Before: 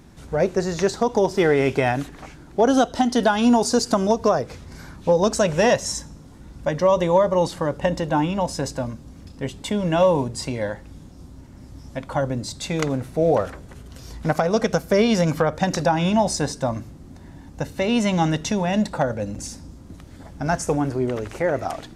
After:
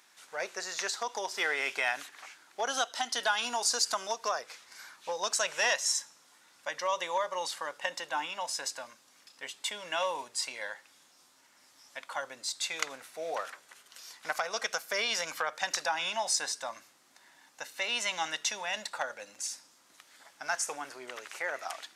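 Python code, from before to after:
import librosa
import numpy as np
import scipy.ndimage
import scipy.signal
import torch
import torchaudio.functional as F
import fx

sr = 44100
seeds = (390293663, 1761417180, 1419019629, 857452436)

y = scipy.signal.sosfilt(scipy.signal.butter(2, 1400.0, 'highpass', fs=sr, output='sos'), x)
y = y * 10.0 ** (-1.5 / 20.0)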